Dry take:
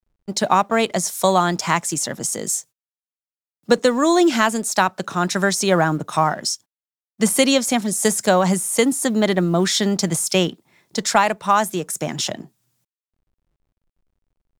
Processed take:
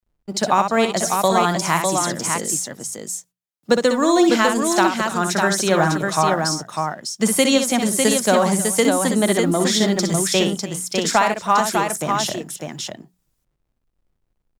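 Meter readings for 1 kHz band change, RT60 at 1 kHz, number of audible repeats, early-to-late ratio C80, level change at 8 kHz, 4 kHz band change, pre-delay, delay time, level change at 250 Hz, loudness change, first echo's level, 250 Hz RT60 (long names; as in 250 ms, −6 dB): +1.0 dB, no reverb audible, 3, no reverb audible, +1.0 dB, +1.0 dB, no reverb audible, 62 ms, +1.0 dB, +0.5 dB, −6.5 dB, no reverb audible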